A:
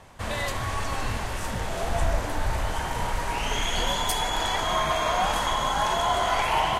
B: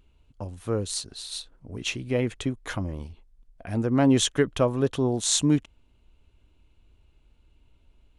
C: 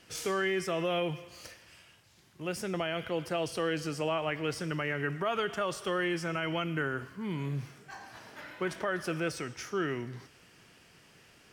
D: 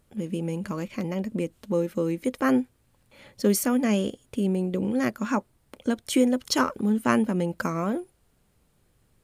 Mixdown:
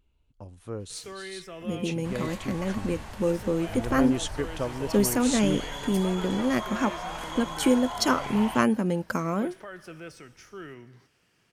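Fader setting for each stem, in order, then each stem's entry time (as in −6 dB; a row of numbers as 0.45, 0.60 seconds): −11.5, −8.5, −9.5, −0.5 decibels; 1.85, 0.00, 0.80, 1.50 seconds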